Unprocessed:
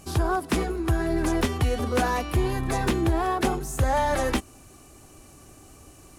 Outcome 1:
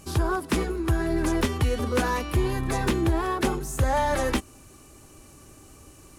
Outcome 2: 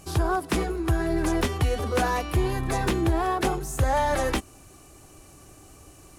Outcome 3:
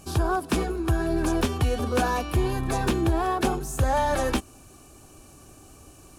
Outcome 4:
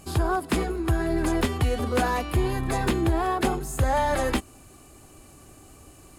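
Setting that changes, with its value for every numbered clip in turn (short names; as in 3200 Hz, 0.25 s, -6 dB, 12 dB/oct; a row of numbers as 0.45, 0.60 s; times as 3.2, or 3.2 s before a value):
notch, frequency: 720, 240, 2000, 5800 Hz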